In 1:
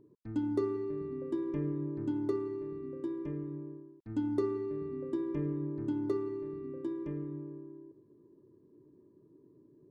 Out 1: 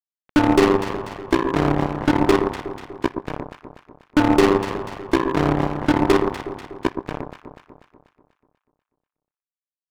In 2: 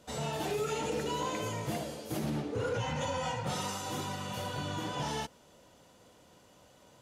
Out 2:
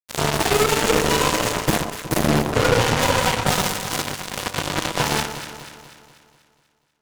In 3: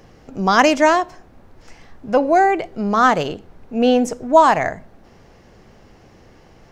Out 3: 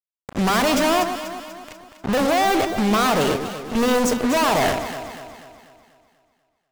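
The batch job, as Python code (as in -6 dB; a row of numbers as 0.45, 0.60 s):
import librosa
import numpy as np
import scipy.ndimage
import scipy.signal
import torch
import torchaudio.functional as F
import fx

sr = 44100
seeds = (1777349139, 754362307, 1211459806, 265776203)

y = fx.fuzz(x, sr, gain_db=36.0, gate_db=-33.0)
y = fx.power_curve(y, sr, exponent=2.0)
y = fx.echo_alternate(y, sr, ms=122, hz=1200.0, feedback_pct=70, wet_db=-7.0)
y = y * 10.0 ** (-22 / 20.0) / np.sqrt(np.mean(np.square(y)))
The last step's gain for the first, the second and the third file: +6.0, +5.5, -1.5 dB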